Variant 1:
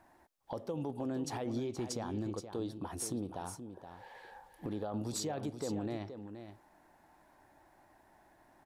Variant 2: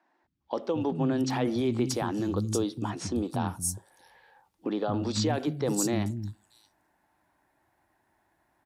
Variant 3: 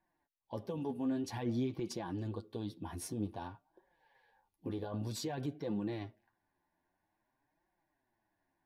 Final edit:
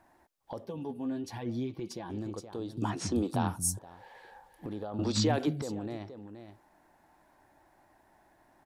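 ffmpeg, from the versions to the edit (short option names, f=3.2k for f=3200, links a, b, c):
-filter_complex "[1:a]asplit=2[a][b];[0:a]asplit=4[c][d][e][f];[c]atrim=end=0.652[g];[2:a]atrim=start=0.648:end=2.102[h];[d]atrim=start=2.098:end=2.772[i];[a]atrim=start=2.768:end=3.792[j];[e]atrim=start=3.788:end=4.992[k];[b]atrim=start=4.988:end=5.622[l];[f]atrim=start=5.618[m];[g][h]acrossfade=d=0.004:c1=hsin:c2=hsin[n];[n][i]acrossfade=d=0.004:c1=hsin:c2=hsin[o];[o][j]acrossfade=d=0.004:c1=hsin:c2=hsin[p];[p][k]acrossfade=d=0.004:c1=hsin:c2=hsin[q];[q][l]acrossfade=d=0.004:c1=hsin:c2=hsin[r];[r][m]acrossfade=d=0.004:c1=hsin:c2=hsin"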